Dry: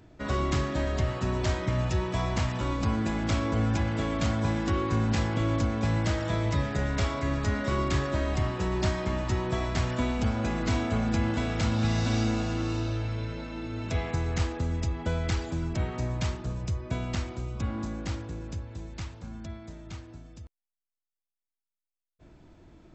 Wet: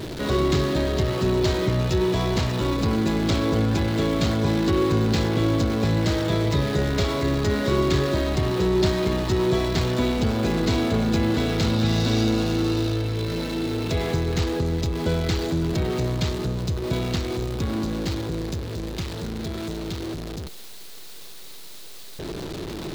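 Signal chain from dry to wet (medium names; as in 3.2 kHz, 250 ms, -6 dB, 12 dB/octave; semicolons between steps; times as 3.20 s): jump at every zero crossing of -31.5 dBFS; fifteen-band graphic EQ 160 Hz +6 dB, 400 Hz +11 dB, 4 kHz +9 dB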